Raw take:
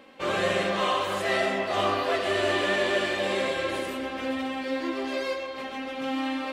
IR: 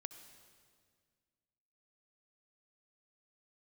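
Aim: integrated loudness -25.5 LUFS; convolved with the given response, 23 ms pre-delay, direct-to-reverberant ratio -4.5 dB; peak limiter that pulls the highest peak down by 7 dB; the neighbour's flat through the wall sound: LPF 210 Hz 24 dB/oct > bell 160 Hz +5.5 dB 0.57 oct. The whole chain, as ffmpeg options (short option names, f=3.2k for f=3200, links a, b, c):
-filter_complex "[0:a]alimiter=limit=-19.5dB:level=0:latency=1,asplit=2[a][b];[1:a]atrim=start_sample=2205,adelay=23[c];[b][c]afir=irnorm=-1:irlink=0,volume=8.5dB[d];[a][d]amix=inputs=2:normalize=0,lowpass=f=210:w=0.5412,lowpass=f=210:w=1.3066,equalizer=f=160:t=o:w=0.57:g=5.5,volume=12dB"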